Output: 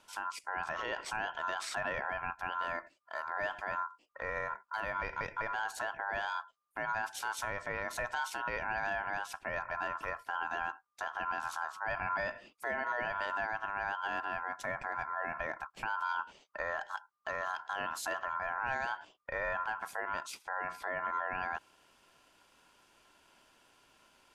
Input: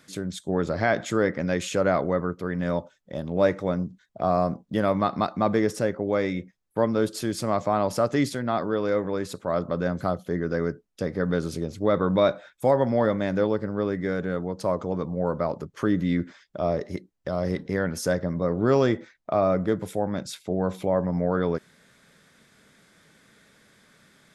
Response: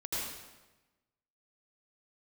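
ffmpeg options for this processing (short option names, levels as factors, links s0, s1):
-af "aeval=exprs='val(0)*sin(2*PI*1200*n/s)':c=same,alimiter=limit=0.106:level=0:latency=1:release=73,volume=0.596"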